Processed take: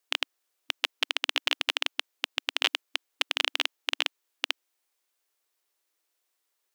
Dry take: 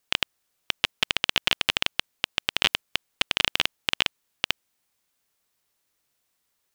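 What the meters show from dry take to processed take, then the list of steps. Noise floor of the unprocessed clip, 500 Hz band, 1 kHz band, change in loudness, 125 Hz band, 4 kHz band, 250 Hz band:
-76 dBFS, -3.5 dB, -3.5 dB, -3.5 dB, under -40 dB, -3.5 dB, -8.0 dB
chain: brick-wall FIR high-pass 280 Hz; dynamic EQ 9400 Hz, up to -3 dB, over -59 dBFS, Q 3.9; gain -3.5 dB

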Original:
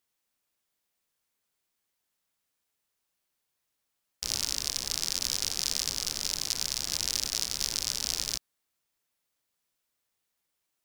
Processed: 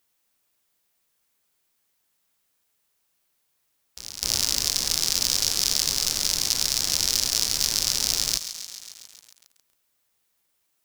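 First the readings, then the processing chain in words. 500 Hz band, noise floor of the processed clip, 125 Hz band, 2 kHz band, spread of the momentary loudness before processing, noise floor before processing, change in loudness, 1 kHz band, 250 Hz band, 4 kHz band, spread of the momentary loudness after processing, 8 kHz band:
+7.0 dB, -73 dBFS, +7.0 dB, +6.5 dB, 2 LU, -82 dBFS, +7.5 dB, +6.5 dB, +6.5 dB, +7.5 dB, 12 LU, +7.5 dB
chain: on a send: reverse echo 0.254 s -14 dB; on the sum: overloaded stage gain 11.5 dB; high shelf 11000 Hz +4.5 dB; lo-fi delay 0.136 s, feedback 80%, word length 7-bit, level -11.5 dB; gain +6.5 dB

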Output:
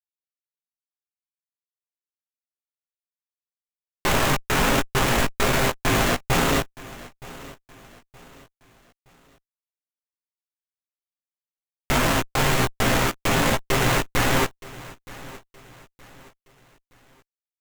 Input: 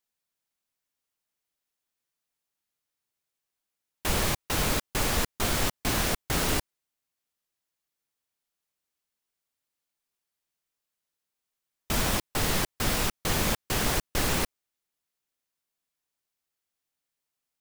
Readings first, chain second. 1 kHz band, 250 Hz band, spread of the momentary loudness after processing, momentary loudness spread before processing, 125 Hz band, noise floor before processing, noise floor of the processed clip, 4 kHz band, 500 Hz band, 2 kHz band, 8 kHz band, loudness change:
+9.0 dB, +7.5 dB, 20 LU, 2 LU, +7.0 dB, under -85 dBFS, under -85 dBFS, +4.5 dB, +8.5 dB, +8.5 dB, +2.0 dB, +6.0 dB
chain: bell 83 Hz -10 dB 0.35 oct; comb 7.5 ms, depth 50%; de-hum 370.7 Hz, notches 36; in parallel at -1 dB: limiter -23 dBFS, peak gain reduction 10.5 dB; on the sum: bit-crush 4-bit; chorus 1.6 Hz, delay 15 ms, depth 3.2 ms; on a send: feedback echo 0.92 s, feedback 38%, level -19.5 dB; on the sum: running maximum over 9 samples; gain +6.5 dB

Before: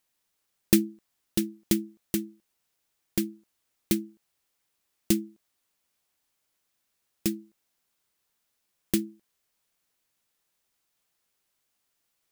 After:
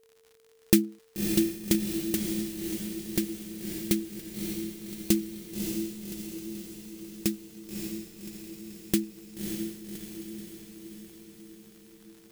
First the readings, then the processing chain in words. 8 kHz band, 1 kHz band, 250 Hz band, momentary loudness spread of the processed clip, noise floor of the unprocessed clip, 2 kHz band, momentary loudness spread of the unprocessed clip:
+2.0 dB, n/a, +2.0 dB, 18 LU, -78 dBFS, +2.0 dB, 16 LU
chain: crackle 97/s -44 dBFS; whine 450 Hz -60 dBFS; diffused feedback echo 0.585 s, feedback 60%, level -4 dB

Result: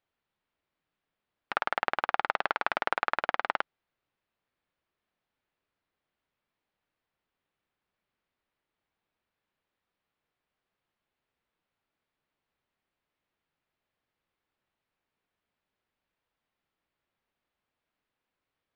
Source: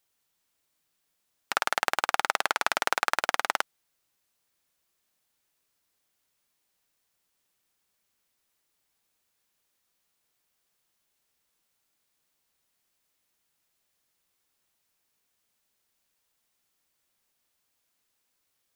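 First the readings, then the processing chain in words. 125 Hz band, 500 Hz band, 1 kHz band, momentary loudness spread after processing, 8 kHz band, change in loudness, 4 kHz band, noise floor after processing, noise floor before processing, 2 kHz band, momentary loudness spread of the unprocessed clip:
n/a, -1.0 dB, -2.0 dB, 5 LU, under -25 dB, -3.0 dB, -9.0 dB, under -85 dBFS, -77 dBFS, -3.0 dB, 5 LU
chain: air absorption 370 m

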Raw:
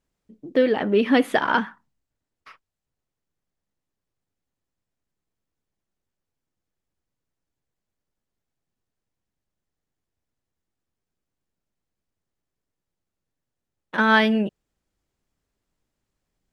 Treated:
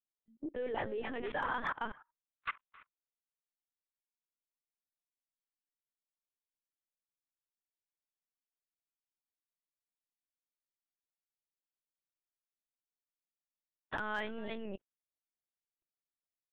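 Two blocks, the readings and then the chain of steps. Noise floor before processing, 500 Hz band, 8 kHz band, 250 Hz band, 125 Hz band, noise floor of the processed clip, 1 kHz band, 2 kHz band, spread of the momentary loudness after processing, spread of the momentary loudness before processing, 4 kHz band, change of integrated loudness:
-85 dBFS, -17.5 dB, n/a, -22.0 dB, -17.0 dB, under -85 dBFS, -14.0 dB, -16.0 dB, 11 LU, 11 LU, -18.5 dB, -18.5 dB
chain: spectral noise reduction 22 dB; reverse; compressor 20:1, threshold -26 dBFS, peak gain reduction 14.5 dB; reverse; LPC vocoder at 8 kHz pitch kept; high shelf 2200 Hz -6 dB; on a send: echo 0.278 s -15.5 dB; on the sum: level quantiser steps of 24 dB; hard clip -38 dBFS, distortion -32 dB; vibrato 1.4 Hz 76 cents; low shelf 230 Hz -11.5 dB; gain +14.5 dB

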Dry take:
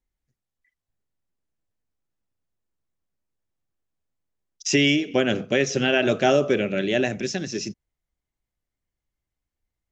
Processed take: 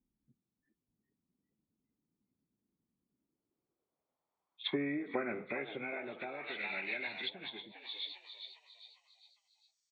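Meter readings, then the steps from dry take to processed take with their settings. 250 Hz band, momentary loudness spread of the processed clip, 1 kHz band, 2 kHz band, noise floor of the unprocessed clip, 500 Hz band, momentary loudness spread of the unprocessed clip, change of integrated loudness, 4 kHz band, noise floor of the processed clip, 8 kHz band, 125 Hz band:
-17.5 dB, 13 LU, -15.5 dB, -13.5 dB, under -85 dBFS, -19.5 dB, 11 LU, -17.5 dB, -14.0 dB, under -85 dBFS, n/a, -23.5 dB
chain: nonlinear frequency compression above 1400 Hz 1.5:1; bell 91 Hz -3.5 dB 0.77 oct; compressor 4:1, threshold -24 dBFS, peak gain reduction 8.5 dB; high shelf 4400 Hz +3 dB; band-pass sweep 230 Hz -> 5700 Hz, 3.01–6.52; frequency-shifting echo 0.404 s, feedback 44%, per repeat +90 Hz, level -10 dB; treble ducked by the level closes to 740 Hz, closed at -40.5 dBFS; comb 0.9 ms, depth 40%; gain +11.5 dB

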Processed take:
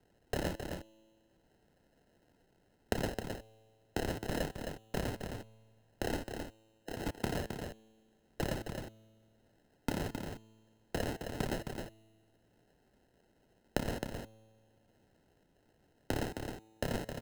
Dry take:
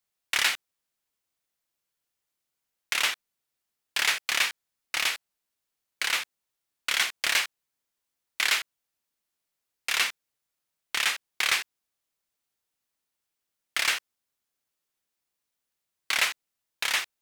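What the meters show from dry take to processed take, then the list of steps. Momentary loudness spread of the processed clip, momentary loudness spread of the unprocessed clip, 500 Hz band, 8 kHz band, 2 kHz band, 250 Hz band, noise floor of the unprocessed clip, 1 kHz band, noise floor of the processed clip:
10 LU, 11 LU, +9.0 dB, -17.5 dB, -18.0 dB, +17.0 dB, -84 dBFS, -7.0 dB, -72 dBFS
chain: spectral delete 6.3–7.07, 530–11000 Hz; bell 10000 Hz -15 dB 1.9 oct; notch 2700 Hz, Q 21; compressor 6:1, threshold -38 dBFS, peak gain reduction 14 dB; sample-and-hold 38×; resonator 110 Hz, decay 1.4 s, harmonics all, mix 40%; echo 0.264 s -8 dB; three-band squash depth 40%; gain +10.5 dB

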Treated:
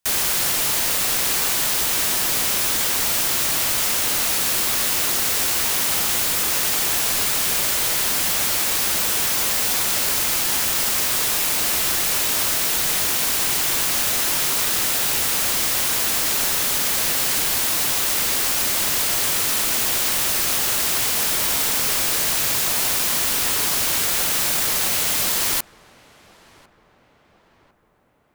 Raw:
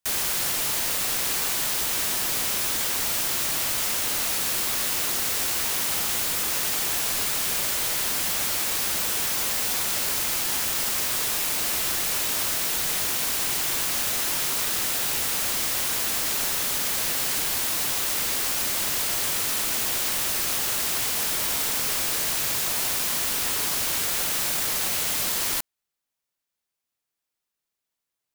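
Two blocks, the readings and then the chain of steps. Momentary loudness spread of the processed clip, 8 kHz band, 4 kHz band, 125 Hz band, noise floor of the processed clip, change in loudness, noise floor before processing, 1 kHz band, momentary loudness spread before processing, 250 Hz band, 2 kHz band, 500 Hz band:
0 LU, +5.0 dB, +5.0 dB, +5.0 dB, -57 dBFS, +5.0 dB, -85 dBFS, +5.0 dB, 0 LU, +5.0 dB, +5.0 dB, +5.0 dB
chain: darkening echo 1.051 s, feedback 58%, low-pass 1700 Hz, level -21 dB; gain +5 dB

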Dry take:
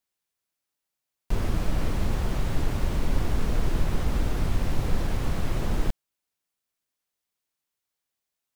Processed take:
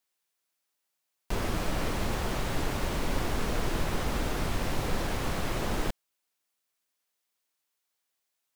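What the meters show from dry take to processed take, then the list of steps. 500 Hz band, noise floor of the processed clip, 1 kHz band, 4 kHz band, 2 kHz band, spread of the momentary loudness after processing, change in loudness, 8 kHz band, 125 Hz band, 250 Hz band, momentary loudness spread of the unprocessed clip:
+1.5 dB, -82 dBFS, +3.0 dB, +3.5 dB, +3.5 dB, 1 LU, -2.5 dB, +3.5 dB, -6.0 dB, -2.0 dB, 2 LU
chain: low shelf 220 Hz -11.5 dB; gain +3.5 dB

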